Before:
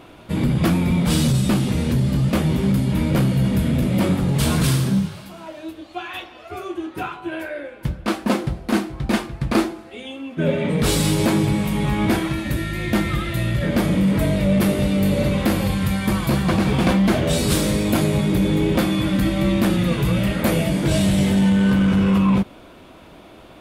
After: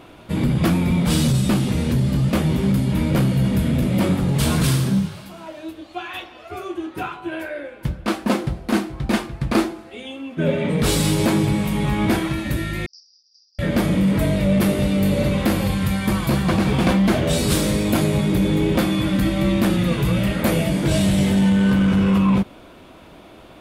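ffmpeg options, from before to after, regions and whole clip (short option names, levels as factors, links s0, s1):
-filter_complex "[0:a]asettb=1/sr,asplit=3[s0][s1][s2];[s0]atrim=end=12.864[s3];[s1]atrim=start=12.86:end=13.59,asetpts=PTS-STARTPTS,afade=t=in:d=0.004:c=qsin,afade=t=out:st=0.726:d=0.004:c=qsin,asuperpass=centerf=5200:order=8:qfactor=5.1,agate=range=0.0224:threshold=0.00224:ratio=3:release=100:detection=peak[s4];[s2]atrim=start=13.586[s5];[s3][s4]acrossfade=d=0.004:c1=hsin:c2=qsin[s6];[s6][s5]acrossfade=d=0.004:c1=qsin:c2=hsin"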